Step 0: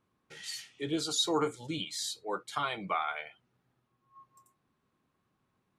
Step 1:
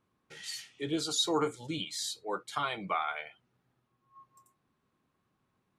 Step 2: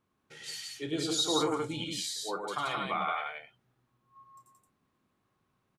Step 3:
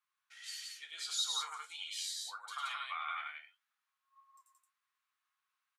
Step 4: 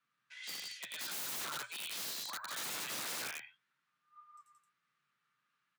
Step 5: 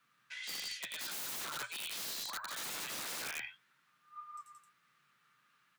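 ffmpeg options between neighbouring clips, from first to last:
-af anull
-af "aecho=1:1:32.07|102|174.9:0.282|0.562|0.708,volume=-1.5dB"
-af "highpass=f=1.2k:w=0.5412,highpass=f=1.2k:w=1.3066,flanger=delay=7:depth=5.2:regen=56:speed=1.6:shape=triangular"
-af "aemphasis=mode=reproduction:type=bsi,aeval=exprs='(mod(126*val(0)+1,2)-1)/126':c=same,afreqshift=120,volume=6.5dB"
-af "areverse,acompressor=threshold=-49dB:ratio=6,areverse,aeval=exprs='0.0126*(cos(1*acos(clip(val(0)/0.0126,-1,1)))-cos(1*PI/2))+0.000708*(cos(2*acos(clip(val(0)/0.0126,-1,1)))-cos(2*PI/2))':c=same,volume=10dB"

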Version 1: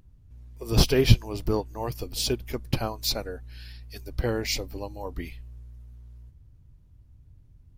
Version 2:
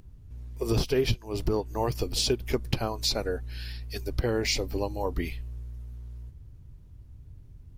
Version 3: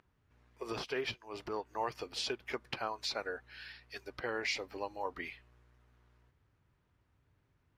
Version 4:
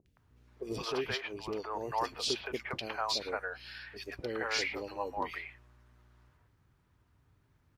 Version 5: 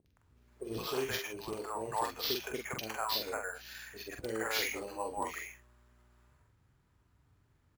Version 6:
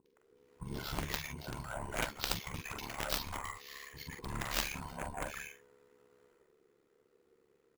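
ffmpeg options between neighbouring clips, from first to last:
-filter_complex "[0:a]acompressor=threshold=-28dB:ratio=16,equalizer=f=400:t=o:w=0.32:g=4,acrossover=split=9500[a][b];[b]acompressor=threshold=-53dB:ratio=4:attack=1:release=60[c];[a][c]amix=inputs=2:normalize=0,volume=5.5dB"
-af "bandpass=f=1.5k:t=q:w=1.1:csg=0"
-filter_complex "[0:a]acrossover=split=530|2400[a][b][c];[c]adelay=60[d];[b]adelay=170[e];[a][e][d]amix=inputs=3:normalize=0,volume=5dB"
-filter_complex "[0:a]acrusher=samples=5:mix=1:aa=0.000001,asplit=2[a][b];[b]adelay=45,volume=-5dB[c];[a][c]amix=inputs=2:normalize=0,volume=-2dB"
-af "afftfilt=real='real(if(between(b,1,1008),(2*floor((b-1)/24)+1)*24-b,b),0)':imag='imag(if(between(b,1,1008),(2*floor((b-1)/24)+1)*24-b,b),0)*if(between(b,1,1008),-1,1)':win_size=2048:overlap=0.75,aeval=exprs='0.1*(cos(1*acos(clip(val(0)/0.1,-1,1)))-cos(1*PI/2))+0.0224*(cos(2*acos(clip(val(0)/0.1,-1,1)))-cos(2*PI/2))+0.0447*(cos(3*acos(clip(val(0)/0.1,-1,1)))-cos(3*PI/2))':c=same,aeval=exprs='val(0)*sin(2*PI*35*n/s)':c=same,volume=11dB"

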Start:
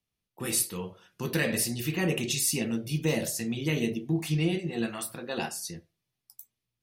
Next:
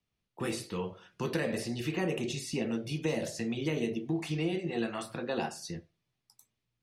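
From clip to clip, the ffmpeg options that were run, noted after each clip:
-filter_complex "[0:a]lowpass=9.7k,highshelf=f=6.2k:g=-11.5,acrossover=split=320|1200|6400[a][b][c][d];[a]acompressor=threshold=-40dB:ratio=4[e];[b]acompressor=threshold=-34dB:ratio=4[f];[c]acompressor=threshold=-45dB:ratio=4[g];[d]acompressor=threshold=-52dB:ratio=4[h];[e][f][g][h]amix=inputs=4:normalize=0,volume=3dB"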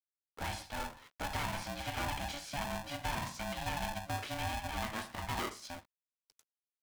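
-filter_complex "[0:a]aeval=exprs='val(0)*gte(abs(val(0)),0.00119)':c=same,asplit=2[a][b];[b]highpass=f=720:p=1,volume=15dB,asoftclip=type=tanh:threshold=-19dB[c];[a][c]amix=inputs=2:normalize=0,lowpass=f=2.2k:p=1,volume=-6dB,aeval=exprs='val(0)*sgn(sin(2*PI*430*n/s))':c=same,volume=-7dB"

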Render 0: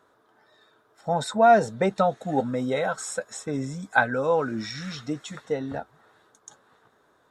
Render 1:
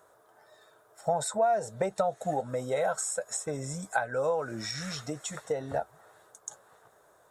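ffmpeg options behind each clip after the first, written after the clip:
-af "highshelf=f=5.2k:t=q:w=1.5:g=10,acompressor=threshold=-27dB:ratio=12,equalizer=f=250:t=o:w=0.67:g=-10,equalizer=f=630:t=o:w=0.67:g=7,equalizer=f=6.3k:t=o:w=0.67:g=-5"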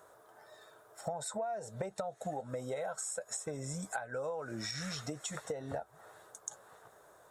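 -af "acompressor=threshold=-38dB:ratio=5,volume=1.5dB"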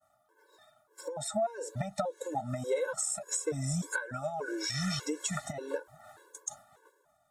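-af "agate=range=-33dB:threshold=-51dB:ratio=3:detection=peak,dynaudnorm=f=250:g=9:m=4.5dB,afftfilt=real='re*gt(sin(2*PI*1.7*pts/sr)*(1-2*mod(floor(b*sr/1024/290),2)),0)':imag='im*gt(sin(2*PI*1.7*pts/sr)*(1-2*mod(floor(b*sr/1024/290),2)),0)':win_size=1024:overlap=0.75,volume=4.5dB"

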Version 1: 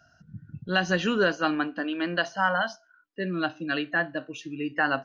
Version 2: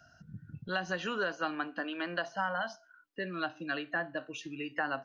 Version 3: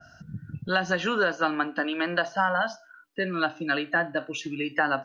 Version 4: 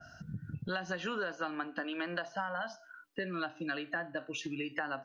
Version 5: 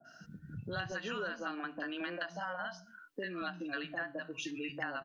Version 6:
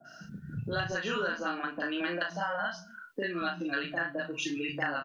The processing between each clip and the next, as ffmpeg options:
-filter_complex "[0:a]acrossover=split=620|1300[a][b][c];[a]acompressor=threshold=-42dB:ratio=4[d];[b]acompressor=threshold=-35dB:ratio=4[e];[c]acompressor=threshold=-40dB:ratio=4[f];[d][e][f]amix=inputs=3:normalize=0"
-af "adynamicequalizer=threshold=0.00708:dfrequency=2400:dqfactor=0.7:tfrequency=2400:tqfactor=0.7:attack=5:release=100:ratio=0.375:range=1.5:mode=cutabove:tftype=highshelf,volume=9dB"
-af "acompressor=threshold=-35dB:ratio=3,volume=-1.5dB"
-filter_complex "[0:a]acrossover=split=180|830[a][b][c];[c]adelay=40[d];[a]adelay=230[e];[e][b][d]amix=inputs=3:normalize=0,volume=-1dB"
-filter_complex "[0:a]asplit=2[a][b];[b]adelay=35,volume=-5.5dB[c];[a][c]amix=inputs=2:normalize=0,volume=5.5dB"

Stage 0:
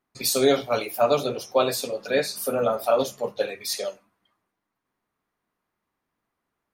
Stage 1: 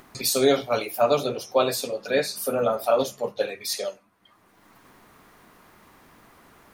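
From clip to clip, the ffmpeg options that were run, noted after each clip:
-af "acompressor=mode=upward:threshold=-31dB:ratio=2.5"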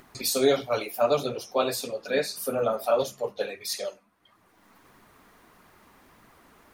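-af "flanger=delay=0.4:depth=4.5:regen=-44:speed=1.6:shape=triangular,volume=1dB"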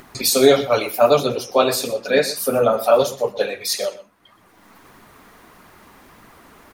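-af "aecho=1:1:122:0.158,volume=9dB"

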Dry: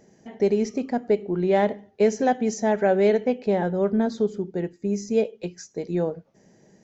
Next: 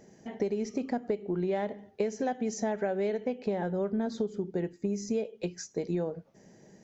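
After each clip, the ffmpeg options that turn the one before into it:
-af "acompressor=threshold=-27dB:ratio=10"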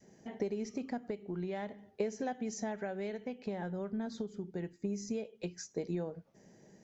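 -af "adynamicequalizer=threshold=0.00631:dfrequency=470:dqfactor=0.82:tfrequency=470:tqfactor=0.82:attack=5:release=100:ratio=0.375:range=3.5:mode=cutabove:tftype=bell,volume=-4dB"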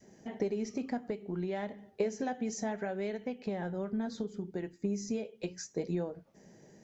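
-af "flanger=delay=3:depth=5.7:regen=-74:speed=0.65:shape=sinusoidal,volume=7dB"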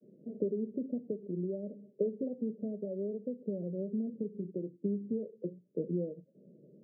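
-af "asuperpass=centerf=270:order=20:qfactor=0.58"

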